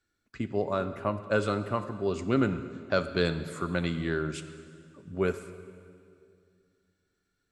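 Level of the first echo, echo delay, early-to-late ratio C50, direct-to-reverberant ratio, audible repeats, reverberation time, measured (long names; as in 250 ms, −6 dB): no echo audible, no echo audible, 11.5 dB, 10.5 dB, no echo audible, 2.3 s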